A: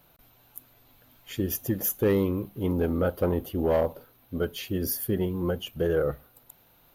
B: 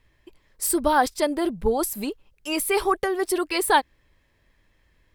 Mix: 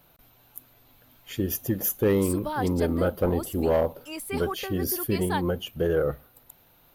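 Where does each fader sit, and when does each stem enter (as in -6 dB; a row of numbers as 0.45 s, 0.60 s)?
+1.0 dB, -11.0 dB; 0.00 s, 1.60 s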